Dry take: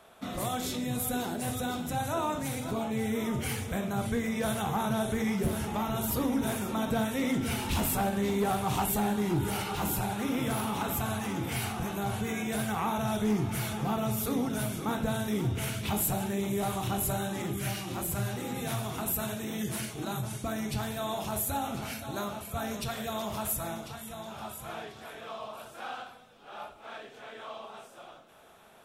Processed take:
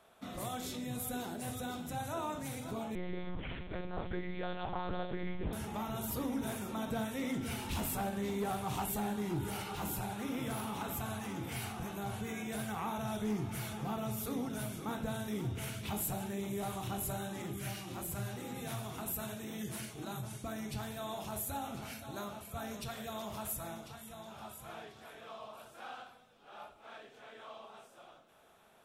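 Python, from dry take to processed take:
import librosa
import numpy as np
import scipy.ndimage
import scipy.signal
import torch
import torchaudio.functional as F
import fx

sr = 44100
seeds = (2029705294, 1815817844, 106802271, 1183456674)

y = fx.lpc_monotone(x, sr, seeds[0], pitch_hz=180.0, order=8, at=(2.95, 5.53))
y = y * librosa.db_to_amplitude(-7.5)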